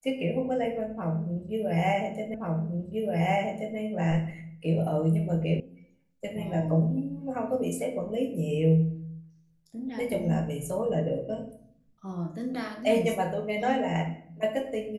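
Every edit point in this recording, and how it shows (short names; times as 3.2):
2.34 repeat of the last 1.43 s
5.6 sound cut off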